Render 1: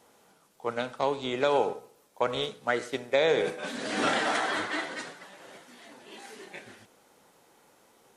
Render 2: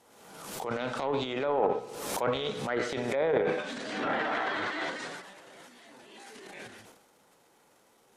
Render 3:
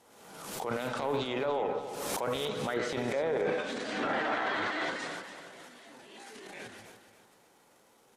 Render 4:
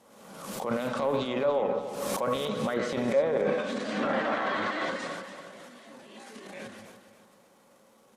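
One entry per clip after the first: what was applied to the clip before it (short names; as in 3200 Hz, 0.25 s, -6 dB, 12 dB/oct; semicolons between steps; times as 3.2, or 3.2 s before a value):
treble ducked by the level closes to 1400 Hz, closed at -21 dBFS; transient shaper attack -8 dB, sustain +12 dB; backwards sustainer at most 45 dB/s; gain -3 dB
limiter -22 dBFS, peak gain reduction 8 dB; on a send: feedback echo 0.287 s, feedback 37%, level -11.5 dB
small resonant body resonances 210/550/1100 Hz, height 10 dB, ringing for 45 ms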